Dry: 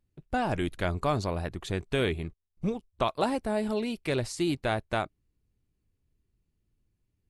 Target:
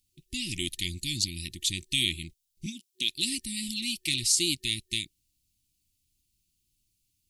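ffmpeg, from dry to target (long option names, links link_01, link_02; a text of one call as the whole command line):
ffmpeg -i in.wav -filter_complex "[0:a]asettb=1/sr,asplit=3[link_01][link_02][link_03];[link_01]atrim=end=2.664[link_04];[link_02]atrim=start=2.66:end=3.09,asetpts=PTS-STARTPTS,afade=type=in:duration=0.004:curve=qsin,afade=type=out:start_time=0.426:duration=0.004:curve=qsin,highpass=frequency=180:width=0.5412,highpass=frequency=180:width=1.3066[link_05];[link_03]atrim=start=3.086[link_06];[link_04][link_05]acrossfade=duration=0.004:curve1=hsin:curve2=qsin[link_07];[link_07][link_06]acrossfade=duration=0.004:curve1=qsin:curve2=hsin,afftfilt=real='re*(1-between(b*sr/4096,370,1800))':imag='im*(1-between(b*sr/4096,370,1800))':win_size=4096:overlap=0.75,aexciter=amount=9:drive=5.8:freq=2600,volume=-6dB" out.wav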